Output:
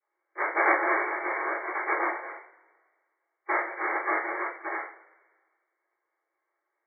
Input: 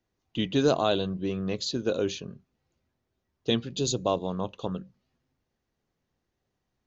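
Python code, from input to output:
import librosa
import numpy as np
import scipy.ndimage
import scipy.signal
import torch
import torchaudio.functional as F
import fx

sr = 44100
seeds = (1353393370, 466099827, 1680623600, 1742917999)

y = fx.noise_vocoder(x, sr, seeds[0], bands=1)
y = fx.brickwall_bandpass(y, sr, low_hz=310.0, high_hz=2300.0)
y = fx.rev_double_slope(y, sr, seeds[1], early_s=0.37, late_s=1.6, knee_db=-22, drr_db=-9.5)
y = y * 10.0 ** (-4.5 / 20.0)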